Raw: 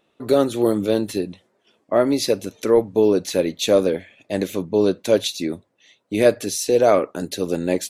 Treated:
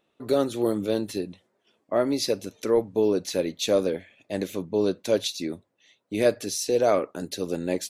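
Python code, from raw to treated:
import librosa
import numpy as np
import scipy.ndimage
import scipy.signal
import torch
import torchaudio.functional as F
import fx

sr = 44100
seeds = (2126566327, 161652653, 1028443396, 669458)

y = fx.dynamic_eq(x, sr, hz=5100.0, q=2.2, threshold_db=-42.0, ratio=4.0, max_db=4)
y = y * 10.0 ** (-6.0 / 20.0)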